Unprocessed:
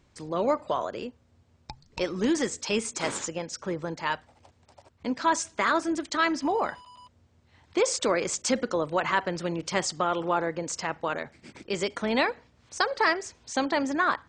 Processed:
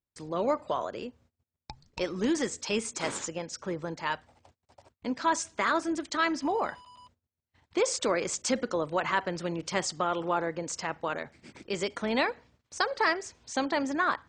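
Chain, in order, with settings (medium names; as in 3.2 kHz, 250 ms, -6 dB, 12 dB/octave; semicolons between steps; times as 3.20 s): gate -57 dBFS, range -30 dB; trim -2.5 dB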